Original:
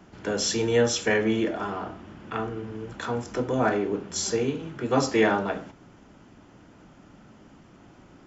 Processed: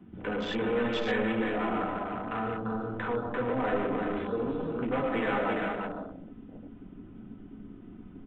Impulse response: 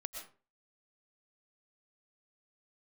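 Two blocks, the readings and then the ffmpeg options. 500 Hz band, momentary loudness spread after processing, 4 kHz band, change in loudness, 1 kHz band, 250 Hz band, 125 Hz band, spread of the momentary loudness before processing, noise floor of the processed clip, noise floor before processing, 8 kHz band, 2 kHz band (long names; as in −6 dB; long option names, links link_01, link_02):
−4.5 dB, 19 LU, −9.0 dB, −4.5 dB, −1.5 dB, −3.0 dB, −5.5 dB, 13 LU, −49 dBFS, −53 dBFS, can't be measured, −3.5 dB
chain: -filter_complex "[0:a]flanger=delay=8.7:depth=2.1:regen=-43:speed=1.4:shape=triangular,bandreject=frequency=50:width_type=h:width=6,bandreject=frequency=100:width_type=h:width=6,bandreject=frequency=150:width_type=h:width=6,bandreject=frequency=200:width_type=h:width=6,bandreject=frequency=250:width_type=h:width=6,bandreject=frequency=300:width_type=h:width=6,bandreject=frequency=350:width_type=h:width=6,bandreject=frequency=400:width_type=h:width=6,bandreject=frequency=450:width_type=h:width=6,aresample=8000,asoftclip=type=tanh:threshold=-31.5dB,aresample=44100,aecho=1:1:4:0.4[link_01];[1:a]atrim=start_sample=2205[link_02];[link_01][link_02]afir=irnorm=-1:irlink=0,asplit=2[link_03][link_04];[link_04]acompressor=threshold=-48dB:ratio=6,volume=3dB[link_05];[link_03][link_05]amix=inputs=2:normalize=0,aecho=1:1:203|343:0.126|0.631,afwtdn=0.00794,volume=4dB"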